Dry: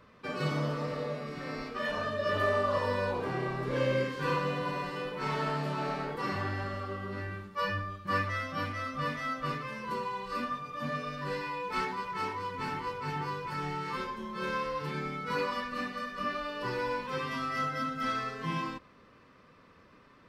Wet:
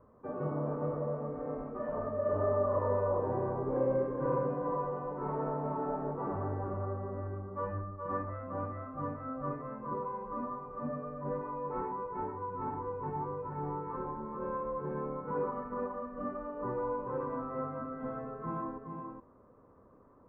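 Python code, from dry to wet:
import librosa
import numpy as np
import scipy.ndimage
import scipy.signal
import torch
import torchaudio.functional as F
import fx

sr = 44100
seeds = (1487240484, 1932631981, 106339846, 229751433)

p1 = scipy.signal.sosfilt(scipy.signal.butter(4, 1000.0, 'lowpass', fs=sr, output='sos'), x)
p2 = fx.peak_eq(p1, sr, hz=170.0, db=-6.5, octaves=0.67)
y = p2 + fx.echo_single(p2, sr, ms=420, db=-5.0, dry=0)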